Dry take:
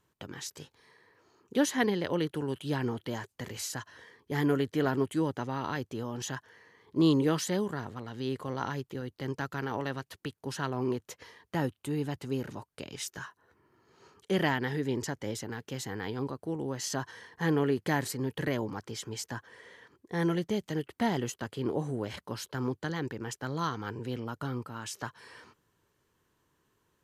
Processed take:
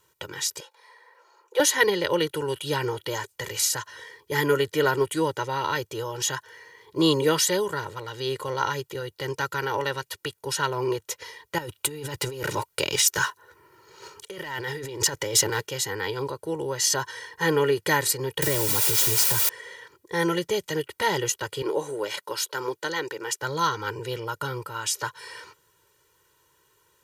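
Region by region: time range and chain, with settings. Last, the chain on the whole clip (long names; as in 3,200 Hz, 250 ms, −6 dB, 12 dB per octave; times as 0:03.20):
0:00.60–0:01.60: high-pass filter 630 Hz 24 dB per octave + tilt shelving filter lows +9 dB, about 1,300 Hz + comb filter 5.8 ms, depth 35%
0:11.58–0:15.67: leveller curve on the samples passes 1 + compressor whose output falls as the input rises −36 dBFS
0:18.42–0:19.49: low-shelf EQ 390 Hz +12 dB + bit-depth reduction 6 bits, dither triangular + downward compressor 2.5 to 1, threshold −28 dBFS
0:21.62–0:23.40: high-pass filter 270 Hz + de-essing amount 70%
whole clip: spectral tilt +2 dB per octave; comb filter 2.1 ms, depth 92%; level +5.5 dB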